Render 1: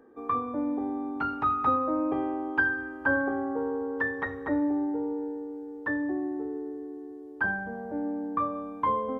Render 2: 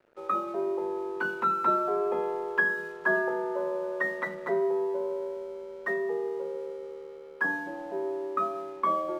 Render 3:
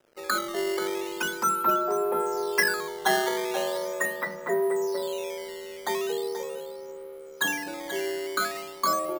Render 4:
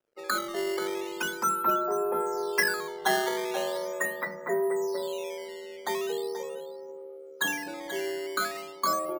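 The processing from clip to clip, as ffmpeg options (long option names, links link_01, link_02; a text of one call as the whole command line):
ffmpeg -i in.wav -af "afreqshift=98,aeval=exprs='sgn(val(0))*max(abs(val(0))-0.00178,0)':channel_layout=same" out.wav
ffmpeg -i in.wav -af "acrusher=samples=10:mix=1:aa=0.000001:lfo=1:lforange=16:lforate=0.4,aecho=1:1:483:0.282,volume=1.5dB" out.wav
ffmpeg -i in.wav -af "afftdn=noise_reduction=16:noise_floor=-49,volume=-2dB" out.wav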